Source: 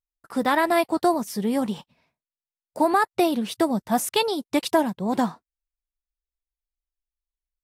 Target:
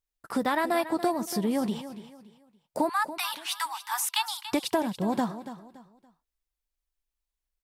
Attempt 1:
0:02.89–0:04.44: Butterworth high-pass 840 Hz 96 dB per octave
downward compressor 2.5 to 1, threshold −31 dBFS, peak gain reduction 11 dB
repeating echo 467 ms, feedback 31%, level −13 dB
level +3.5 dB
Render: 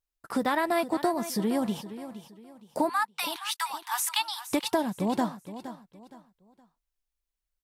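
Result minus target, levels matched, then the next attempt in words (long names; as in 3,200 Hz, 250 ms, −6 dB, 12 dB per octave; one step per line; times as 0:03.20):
echo 183 ms late
0:02.89–0:04.44: Butterworth high-pass 840 Hz 96 dB per octave
downward compressor 2.5 to 1, threshold −31 dBFS, peak gain reduction 11 dB
repeating echo 284 ms, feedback 31%, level −13 dB
level +3.5 dB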